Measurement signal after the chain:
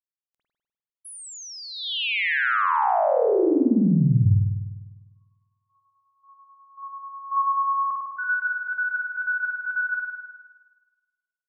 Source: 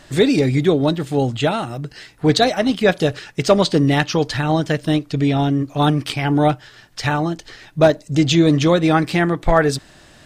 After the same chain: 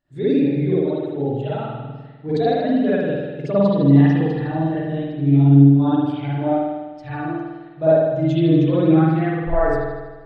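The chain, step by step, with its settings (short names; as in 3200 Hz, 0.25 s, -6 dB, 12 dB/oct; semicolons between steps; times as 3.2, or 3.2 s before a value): spring tank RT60 1.9 s, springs 50 ms, chirp 30 ms, DRR -10 dB; spectral expander 1.5:1; gain -9 dB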